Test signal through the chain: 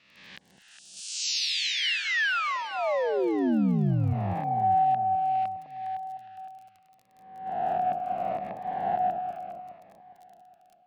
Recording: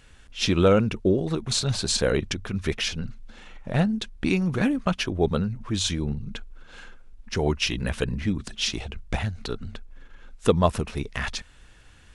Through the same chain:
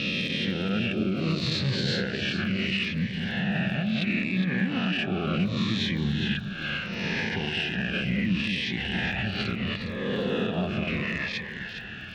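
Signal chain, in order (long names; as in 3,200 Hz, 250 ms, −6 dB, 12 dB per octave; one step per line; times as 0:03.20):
peak hold with a rise ahead of every peak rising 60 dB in 1.05 s
dynamic equaliser 2,100 Hz, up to +6 dB, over −45 dBFS, Q 3.4
in parallel at −2.5 dB: output level in coarse steps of 15 dB
on the sum: loudspeaker in its box 110–4,000 Hz, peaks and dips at 190 Hz +8 dB, 310 Hz −3 dB, 440 Hz −6 dB, 970 Hz −5 dB, 1,700 Hz +8 dB, 2,700 Hz +8 dB
downward compressor 12 to 1, threshold −31 dBFS
soft clipping −19.5 dBFS
brickwall limiter −27 dBFS
on a send: delay that swaps between a low-pass and a high-pass 205 ms, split 840 Hz, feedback 65%, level −4.5 dB
on the sum: surface crackle 23 per second −52 dBFS
phaser whose notches keep moving one way falling 0.72 Hz
level +8.5 dB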